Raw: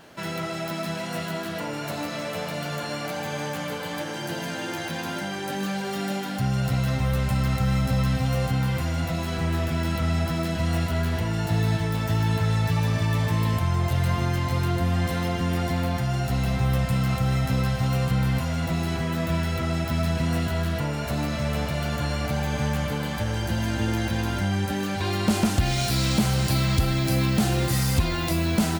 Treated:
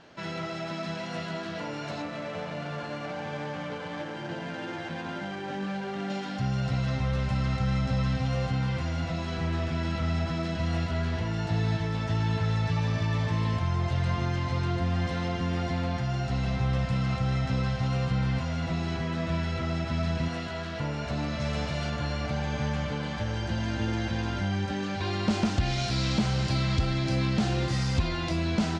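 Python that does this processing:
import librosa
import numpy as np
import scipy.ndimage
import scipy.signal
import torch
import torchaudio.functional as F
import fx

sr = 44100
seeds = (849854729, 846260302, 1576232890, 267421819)

y = fx.median_filter(x, sr, points=9, at=(2.02, 6.1))
y = fx.low_shelf(y, sr, hz=190.0, db=-11.5, at=(20.28, 20.8))
y = fx.high_shelf(y, sr, hz=4900.0, db=8.0, at=(21.4, 21.9))
y = scipy.signal.sosfilt(scipy.signal.butter(4, 6100.0, 'lowpass', fs=sr, output='sos'), y)
y = y * 10.0 ** (-4.0 / 20.0)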